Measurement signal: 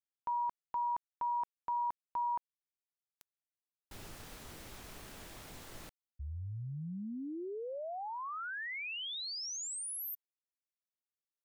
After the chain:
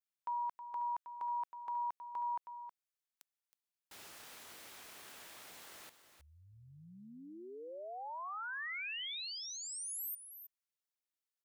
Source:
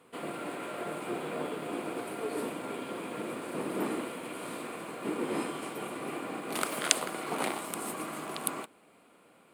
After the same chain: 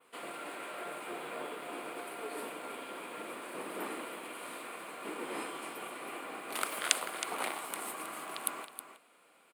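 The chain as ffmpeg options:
-filter_complex "[0:a]highpass=f=960:p=1,adynamicequalizer=threshold=0.00141:dfrequency=6000:dqfactor=1:tfrequency=6000:tqfactor=1:attack=5:release=100:ratio=0.375:range=2.5:mode=cutabove:tftype=bell,asplit=2[s0][s1];[s1]aecho=0:1:318:0.282[s2];[s0][s2]amix=inputs=2:normalize=0"

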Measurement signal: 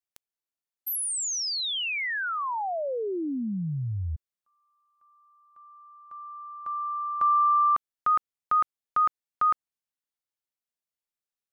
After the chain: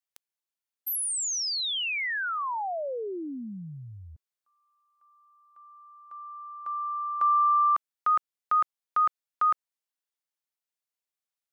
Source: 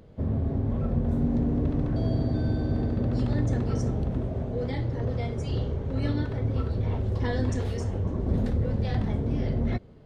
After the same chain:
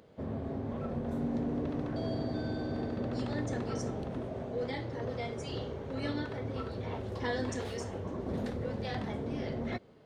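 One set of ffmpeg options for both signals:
-af "highpass=f=470:p=1"

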